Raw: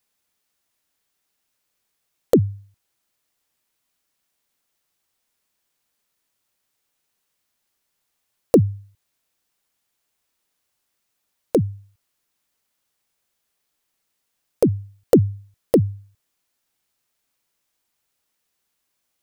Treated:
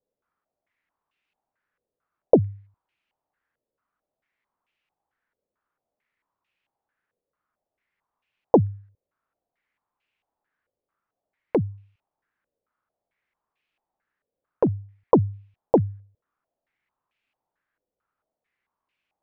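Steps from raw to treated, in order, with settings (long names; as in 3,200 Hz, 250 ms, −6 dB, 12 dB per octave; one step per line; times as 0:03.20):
phase distortion by the signal itself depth 0.12 ms
low-pass on a step sequencer 4.5 Hz 520–2,600 Hz
level −4.5 dB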